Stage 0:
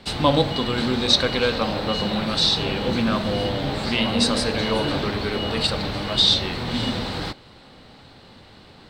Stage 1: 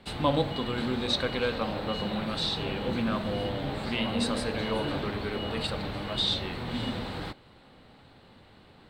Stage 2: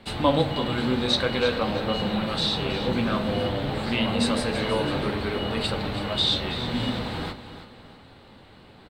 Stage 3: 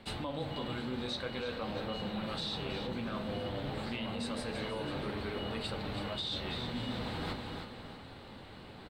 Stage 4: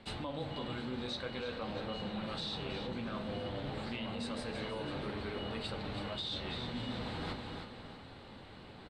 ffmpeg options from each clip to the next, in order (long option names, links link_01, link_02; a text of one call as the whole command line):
ffmpeg -i in.wav -af "equalizer=frequency=5500:width_type=o:width=0.86:gain=-9.5,volume=-7dB" out.wav
ffmpeg -i in.wav -filter_complex "[0:a]flanger=delay=8.9:depth=7.4:regen=-49:speed=0.52:shape=sinusoidal,asplit=2[link_01][link_02];[link_02]aecho=0:1:324|648|972|1296:0.251|0.0955|0.0363|0.0138[link_03];[link_01][link_03]amix=inputs=2:normalize=0,volume=8.5dB" out.wav
ffmpeg -i in.wav -af "alimiter=limit=-18dB:level=0:latency=1:release=215,areverse,acompressor=threshold=-35dB:ratio=6,areverse" out.wav
ffmpeg -i in.wav -af "lowpass=9100,volume=-2dB" out.wav